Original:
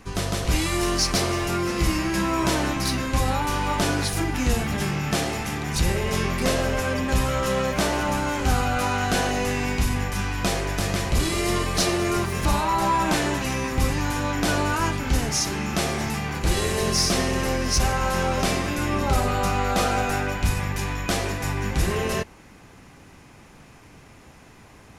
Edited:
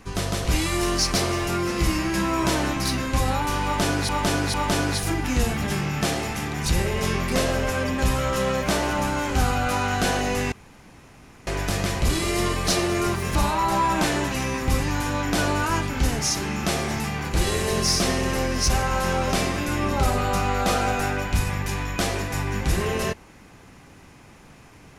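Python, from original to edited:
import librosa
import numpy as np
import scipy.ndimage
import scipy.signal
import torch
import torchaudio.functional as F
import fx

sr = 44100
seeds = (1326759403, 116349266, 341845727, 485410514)

y = fx.edit(x, sr, fx.repeat(start_s=3.64, length_s=0.45, count=3),
    fx.room_tone_fill(start_s=9.62, length_s=0.95), tone=tone)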